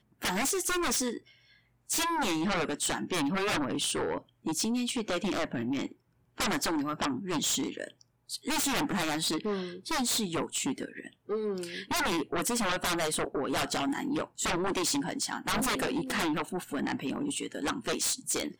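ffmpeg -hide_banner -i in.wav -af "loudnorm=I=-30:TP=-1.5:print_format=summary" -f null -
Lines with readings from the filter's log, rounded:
Input Integrated:    -30.9 LUFS
Input True Peak:     -21.4 dBTP
Input LRA:             1.7 LU
Input Threshold:     -41.1 LUFS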